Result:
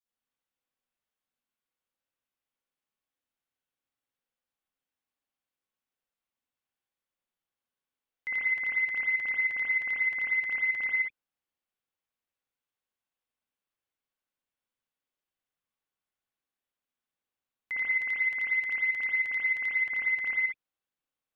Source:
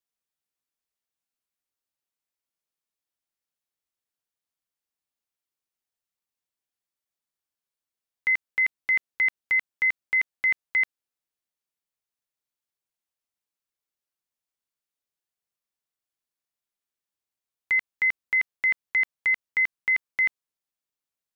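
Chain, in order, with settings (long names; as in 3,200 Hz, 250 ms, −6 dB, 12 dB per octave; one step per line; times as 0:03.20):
0:17.88–0:19.74: high-shelf EQ 3,300 Hz +10 dB
brickwall limiter −21.5 dBFS, peak gain reduction 6.5 dB
convolution reverb, pre-delay 53 ms, DRR −8.5 dB
level −7.5 dB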